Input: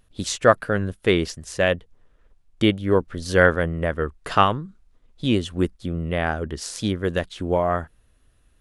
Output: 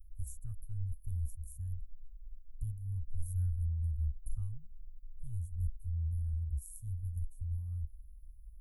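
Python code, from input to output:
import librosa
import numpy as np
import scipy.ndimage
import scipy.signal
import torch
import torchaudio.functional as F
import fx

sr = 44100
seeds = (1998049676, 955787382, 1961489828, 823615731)

y = scipy.signal.sosfilt(scipy.signal.cheby2(4, 70, [250.0, 4700.0], 'bandstop', fs=sr, output='sos'), x)
y = y * 10.0 ** (10.5 / 20.0)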